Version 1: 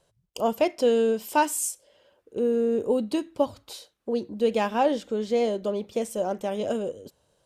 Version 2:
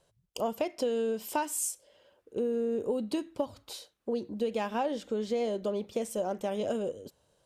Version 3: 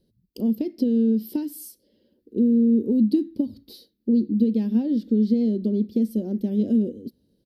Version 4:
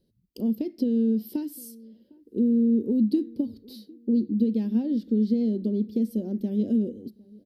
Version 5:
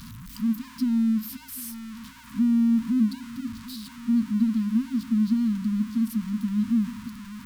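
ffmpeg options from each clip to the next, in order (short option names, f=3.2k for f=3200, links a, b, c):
-af "acompressor=threshold=-25dB:ratio=6,volume=-2dB"
-af "firequalizer=gain_entry='entry(150,0);entry(220,15);entry(640,-18);entry(1200,-28);entry(1800,-15);entry(2500,-18);entry(4500,-2);entry(7100,-24);entry(12000,-2)':delay=0.05:min_phase=1,volume=4dB"
-filter_complex "[0:a]asplit=2[a][b];[b]adelay=755,lowpass=f=950:p=1,volume=-24dB,asplit=2[c][d];[d]adelay=755,lowpass=f=950:p=1,volume=0.38[e];[a][c][e]amix=inputs=3:normalize=0,volume=-3dB"
-af "aeval=exprs='val(0)+0.5*0.0188*sgn(val(0))':c=same,afftfilt=real='re*(1-between(b*sr/4096,270,910))':imag='im*(1-between(b*sr/4096,270,910))':win_size=4096:overlap=0.75,aeval=exprs='val(0)+0.00112*(sin(2*PI*60*n/s)+sin(2*PI*2*60*n/s)/2+sin(2*PI*3*60*n/s)/3+sin(2*PI*4*60*n/s)/4+sin(2*PI*5*60*n/s)/5)':c=same"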